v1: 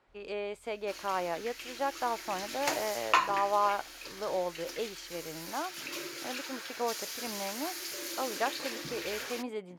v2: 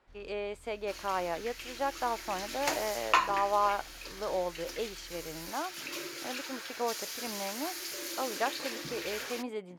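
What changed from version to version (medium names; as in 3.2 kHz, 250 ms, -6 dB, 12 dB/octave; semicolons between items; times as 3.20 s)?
first sound +11.0 dB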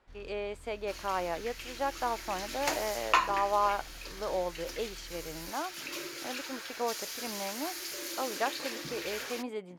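first sound +5.0 dB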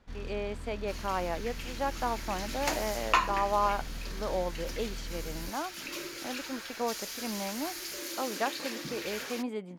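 first sound +10.5 dB; master: add peaking EQ 210 Hz +7.5 dB 0.62 oct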